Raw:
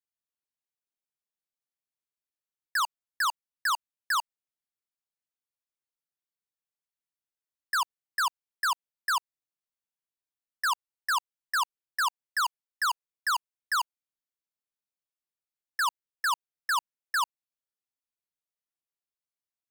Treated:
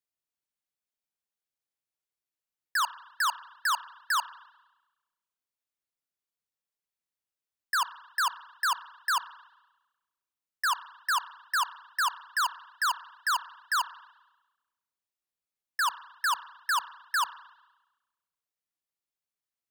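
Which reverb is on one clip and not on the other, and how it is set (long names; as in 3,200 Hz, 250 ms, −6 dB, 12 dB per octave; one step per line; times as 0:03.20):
spring reverb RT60 1.1 s, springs 31/58 ms, chirp 50 ms, DRR 15.5 dB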